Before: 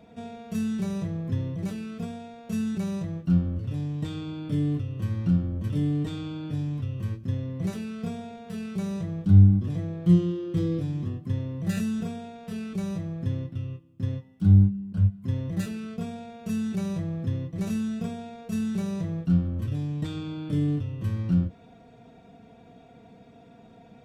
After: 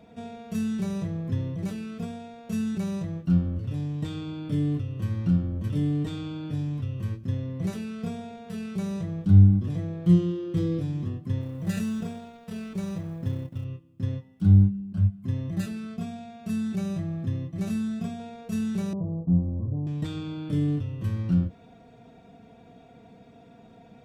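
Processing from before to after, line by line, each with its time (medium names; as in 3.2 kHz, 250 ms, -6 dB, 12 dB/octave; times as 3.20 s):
11.41–13.65 s: companding laws mixed up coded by A
14.80–18.20 s: comb of notches 480 Hz
18.93–19.87 s: steep low-pass 1 kHz 48 dB/octave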